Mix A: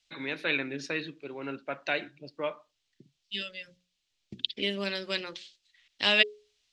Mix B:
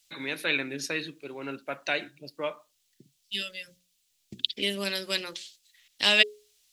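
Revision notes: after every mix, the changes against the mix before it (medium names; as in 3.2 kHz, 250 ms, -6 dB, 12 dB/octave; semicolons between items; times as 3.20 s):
master: remove distance through air 140 m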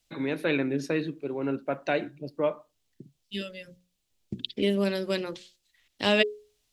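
master: add tilt shelf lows +10 dB, about 1.3 kHz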